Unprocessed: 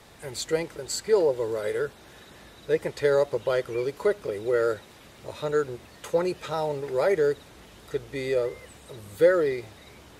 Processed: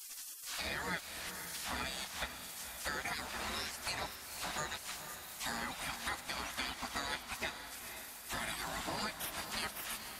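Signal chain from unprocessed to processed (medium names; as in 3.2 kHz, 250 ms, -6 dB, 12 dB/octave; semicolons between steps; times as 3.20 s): reverse the whole clip; spectral gate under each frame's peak -25 dB weak; compression 5:1, threshold -55 dBFS, peak gain reduction 20.5 dB; on a send: echo that smears into a reverb 503 ms, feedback 49%, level -8.5 dB; on the sum: trim +16.5 dB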